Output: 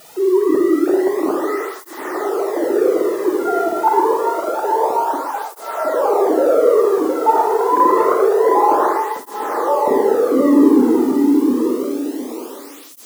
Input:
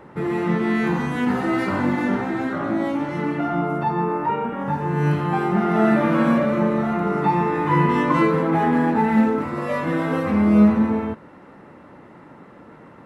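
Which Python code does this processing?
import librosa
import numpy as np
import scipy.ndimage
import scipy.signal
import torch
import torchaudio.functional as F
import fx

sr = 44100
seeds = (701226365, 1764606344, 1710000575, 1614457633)

p1 = fx.sine_speech(x, sr)
p2 = scipy.signal.sosfilt(scipy.signal.butter(2, 1200.0, 'lowpass', fs=sr, output='sos'), p1)
p3 = fx.low_shelf(p2, sr, hz=470.0, db=8.5)
p4 = fx.hum_notches(p3, sr, base_hz=60, count=6)
p5 = fx.over_compress(p4, sr, threshold_db=-18.0, ratio=-1.0)
p6 = p4 + (p5 * 10.0 ** (1.0 / 20.0))
p7 = fx.quant_dither(p6, sr, seeds[0], bits=6, dither='triangular')
p8 = p7 + fx.echo_feedback(p7, sr, ms=713, feedback_pct=42, wet_db=-3.0, dry=0)
p9 = fx.rev_schroeder(p8, sr, rt60_s=1.1, comb_ms=38, drr_db=2.0)
p10 = fx.flanger_cancel(p9, sr, hz=0.27, depth_ms=1.9)
y = p10 * 10.0 ** (-5.5 / 20.0)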